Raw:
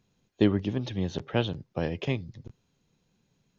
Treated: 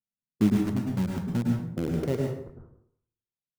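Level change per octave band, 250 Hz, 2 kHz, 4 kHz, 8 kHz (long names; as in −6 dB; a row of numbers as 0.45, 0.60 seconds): +3.5 dB, −5.5 dB, −9.0 dB, can't be measured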